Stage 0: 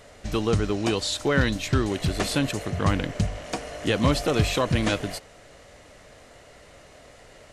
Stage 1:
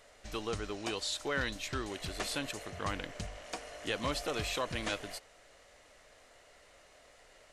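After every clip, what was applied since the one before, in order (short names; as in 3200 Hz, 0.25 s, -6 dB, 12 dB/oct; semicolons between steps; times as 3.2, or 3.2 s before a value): bell 130 Hz -12 dB 2.9 oct; gain -8 dB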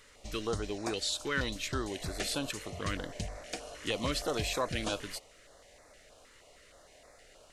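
stepped notch 6.4 Hz 680–3000 Hz; gain +3.5 dB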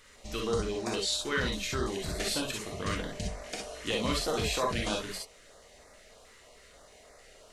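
non-linear reverb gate 80 ms rising, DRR 0.5 dB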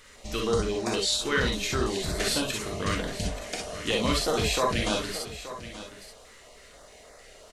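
echo 0.878 s -13.5 dB; gain +4.5 dB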